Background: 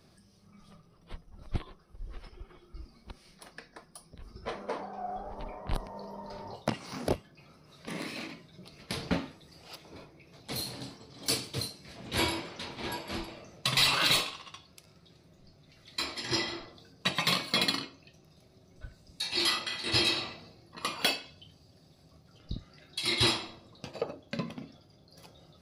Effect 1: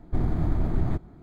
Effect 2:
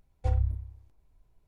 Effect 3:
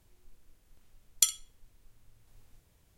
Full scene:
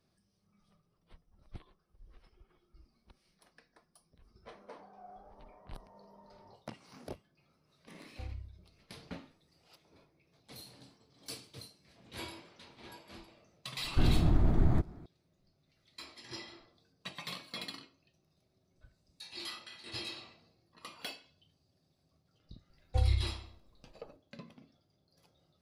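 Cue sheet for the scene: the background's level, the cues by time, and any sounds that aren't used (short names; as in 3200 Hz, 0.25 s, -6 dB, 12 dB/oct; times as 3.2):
background -15 dB
7.94 add 2 -17 dB
13.84 add 1 -1.5 dB
22.7 add 2 -2 dB
not used: 3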